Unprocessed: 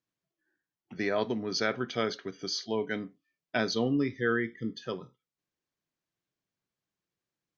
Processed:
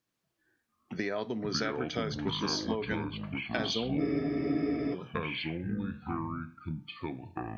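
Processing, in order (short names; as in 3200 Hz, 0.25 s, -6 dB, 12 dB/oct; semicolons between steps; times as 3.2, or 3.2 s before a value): compressor 6:1, threshold -36 dBFS, peak gain reduction 13 dB; echoes that change speed 0.14 s, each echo -6 st, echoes 2; spectral freeze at 4.02, 0.92 s; gain +5.5 dB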